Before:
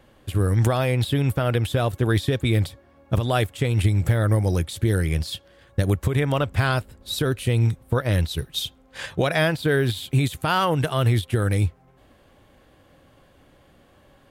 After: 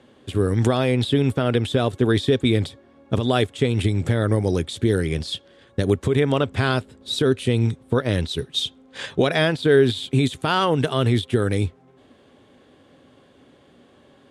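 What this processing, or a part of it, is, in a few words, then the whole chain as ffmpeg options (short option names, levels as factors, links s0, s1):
car door speaker: -af "highpass=100,equalizer=f=250:t=q:w=4:g=8,equalizer=f=410:t=q:w=4:g=8,equalizer=f=3500:t=q:w=4:g=5,lowpass=f=9500:w=0.5412,lowpass=f=9500:w=1.3066"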